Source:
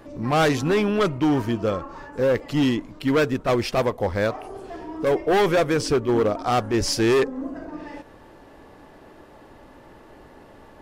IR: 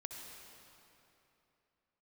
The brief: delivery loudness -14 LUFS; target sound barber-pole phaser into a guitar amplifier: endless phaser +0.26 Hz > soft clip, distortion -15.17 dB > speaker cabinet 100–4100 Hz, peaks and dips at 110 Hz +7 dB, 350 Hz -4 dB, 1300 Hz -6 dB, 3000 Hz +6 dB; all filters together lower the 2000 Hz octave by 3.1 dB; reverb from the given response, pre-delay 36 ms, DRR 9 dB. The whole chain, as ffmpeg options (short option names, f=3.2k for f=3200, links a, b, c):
-filter_complex "[0:a]equalizer=f=2k:t=o:g=-3.5,asplit=2[a][b];[1:a]atrim=start_sample=2205,adelay=36[c];[b][c]afir=irnorm=-1:irlink=0,volume=-6.5dB[d];[a][d]amix=inputs=2:normalize=0,asplit=2[e][f];[f]afreqshift=0.26[g];[e][g]amix=inputs=2:normalize=1,asoftclip=threshold=-18.5dB,highpass=100,equalizer=f=110:t=q:w=4:g=7,equalizer=f=350:t=q:w=4:g=-4,equalizer=f=1.3k:t=q:w=4:g=-6,equalizer=f=3k:t=q:w=4:g=6,lowpass=f=4.1k:w=0.5412,lowpass=f=4.1k:w=1.3066,volume=15dB"